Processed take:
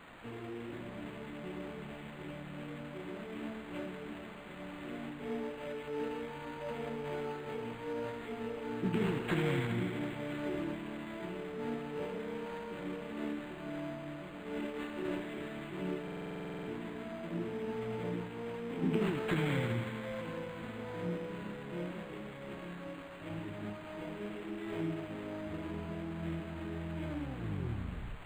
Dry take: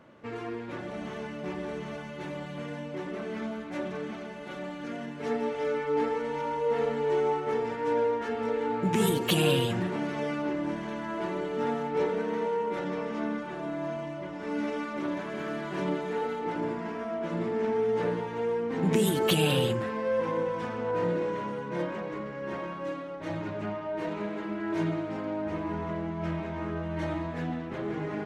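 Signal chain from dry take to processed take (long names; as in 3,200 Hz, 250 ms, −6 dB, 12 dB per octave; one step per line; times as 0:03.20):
turntable brake at the end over 1.18 s
graphic EQ with 10 bands 500 Hz −8 dB, 1,000 Hz −11 dB, 4,000 Hz −5 dB
in parallel at −10.5 dB: bit-depth reduction 6 bits, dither triangular
on the sum: tuned comb filter 59 Hz, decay 1.8 s, harmonics all, mix 60%
formants moved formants +3 semitones
on a send: delay with a high-pass on its return 81 ms, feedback 84%, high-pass 2,800 Hz, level −7.5 dB
on the sum: buffer that repeats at 0:16.03, samples 2,048, times 13
linearly interpolated sample-rate reduction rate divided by 8×
level +1 dB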